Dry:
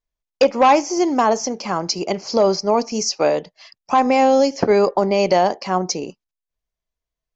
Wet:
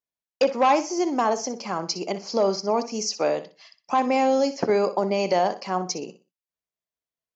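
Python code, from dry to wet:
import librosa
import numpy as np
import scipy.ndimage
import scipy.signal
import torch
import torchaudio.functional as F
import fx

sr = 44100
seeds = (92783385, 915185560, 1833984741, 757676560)

p1 = scipy.signal.sosfilt(scipy.signal.butter(2, 140.0, 'highpass', fs=sr, output='sos'), x)
p2 = p1 + fx.echo_feedback(p1, sr, ms=61, feedback_pct=26, wet_db=-13.0, dry=0)
y = p2 * librosa.db_to_amplitude(-6.0)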